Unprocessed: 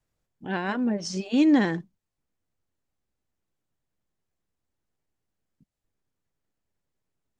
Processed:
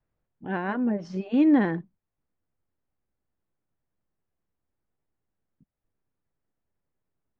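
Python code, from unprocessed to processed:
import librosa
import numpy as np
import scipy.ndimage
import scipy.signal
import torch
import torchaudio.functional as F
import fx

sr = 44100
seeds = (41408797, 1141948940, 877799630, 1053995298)

y = scipy.signal.sosfilt(scipy.signal.butter(2, 1900.0, 'lowpass', fs=sr, output='sos'), x)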